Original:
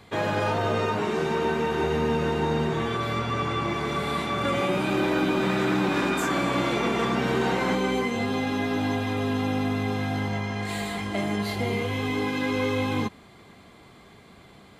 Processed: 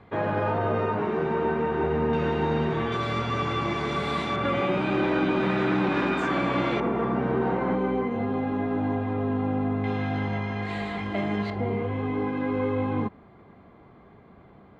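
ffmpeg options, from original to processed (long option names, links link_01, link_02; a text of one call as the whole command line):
ffmpeg -i in.wav -af "asetnsamples=nb_out_samples=441:pad=0,asendcmd='2.13 lowpass f 3100;2.92 lowpass f 5900;4.36 lowpass f 3000;6.8 lowpass f 1200;9.84 lowpass f 2700;11.5 lowpass f 1300',lowpass=1700" out.wav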